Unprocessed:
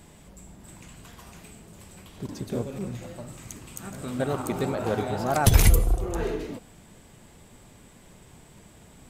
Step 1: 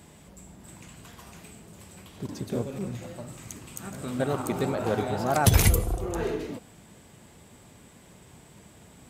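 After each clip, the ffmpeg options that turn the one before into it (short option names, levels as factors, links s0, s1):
-af "highpass=61"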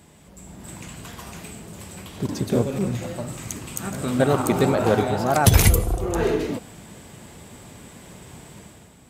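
-af "dynaudnorm=f=100:g=9:m=2.82"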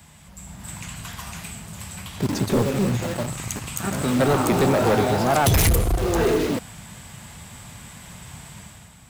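-filter_complex "[0:a]acrossover=split=220|660|6200[s0][s1][s2][s3];[s1]acrusher=bits=5:mix=0:aa=0.000001[s4];[s0][s4][s2][s3]amix=inputs=4:normalize=0,asoftclip=type=tanh:threshold=0.126,volume=1.68"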